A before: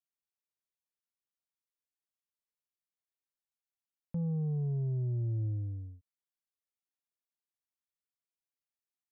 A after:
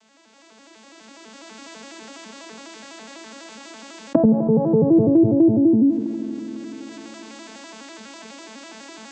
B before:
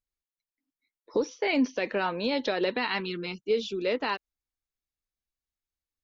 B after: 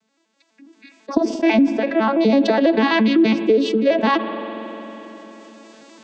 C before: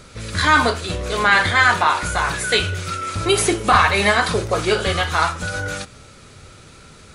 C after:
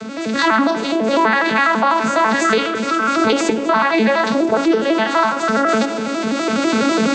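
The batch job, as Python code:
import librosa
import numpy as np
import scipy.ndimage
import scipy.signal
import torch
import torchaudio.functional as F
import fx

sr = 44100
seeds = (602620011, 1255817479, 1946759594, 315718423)

p1 = fx.vocoder_arp(x, sr, chord='major triad', root=57, every_ms=83)
p2 = fx.recorder_agc(p1, sr, target_db=-5.5, rise_db_per_s=18.0, max_gain_db=30)
p3 = p2 + fx.echo_tape(p2, sr, ms=82, feedback_pct=88, wet_db=-23, lp_hz=1100.0, drive_db=2.0, wow_cents=21, dry=0)
p4 = fx.rev_spring(p3, sr, rt60_s=2.2, pass_ms=(45,), chirp_ms=30, drr_db=17.5)
p5 = fx.env_flatten(p4, sr, amount_pct=50)
y = p5 * librosa.db_to_amplitude(-3.5)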